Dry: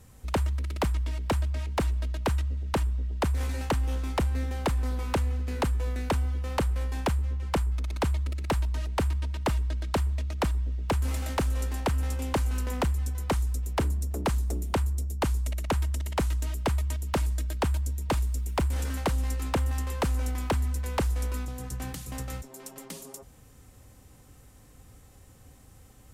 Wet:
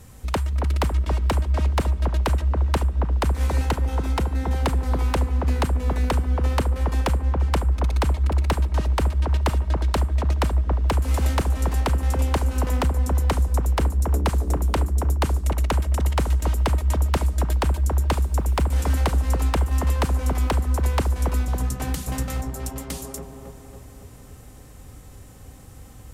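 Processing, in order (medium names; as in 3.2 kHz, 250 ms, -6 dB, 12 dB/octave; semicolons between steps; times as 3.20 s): compression, threshold -29 dBFS, peak gain reduction 6 dB; 3.61–4.56 s: comb of notches 580 Hz; on a send: feedback echo behind a low-pass 276 ms, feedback 57%, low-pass 1.2 kHz, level -4 dB; on the sum: trim +7.5 dB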